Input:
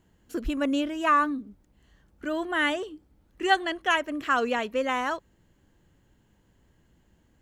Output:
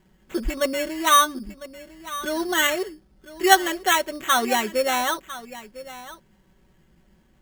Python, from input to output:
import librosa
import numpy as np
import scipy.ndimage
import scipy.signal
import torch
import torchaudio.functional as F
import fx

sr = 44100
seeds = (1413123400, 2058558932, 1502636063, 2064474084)

p1 = x + 0.8 * np.pad(x, (int(5.3 * sr / 1000.0), 0))[:len(x)]
p2 = p1 + fx.echo_single(p1, sr, ms=1002, db=-16.0, dry=0)
p3 = fx.sample_hold(p2, sr, seeds[0], rate_hz=4900.0, jitter_pct=0)
y = p3 * librosa.db_to_amplitude(2.5)